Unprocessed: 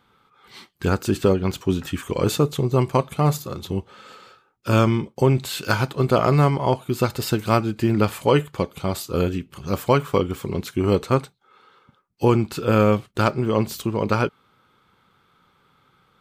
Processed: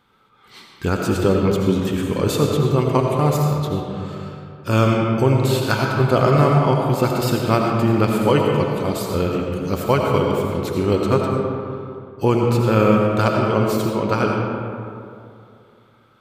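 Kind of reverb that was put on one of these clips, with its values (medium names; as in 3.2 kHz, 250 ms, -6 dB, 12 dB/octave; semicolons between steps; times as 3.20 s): algorithmic reverb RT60 2.6 s, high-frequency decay 0.45×, pre-delay 45 ms, DRR 0 dB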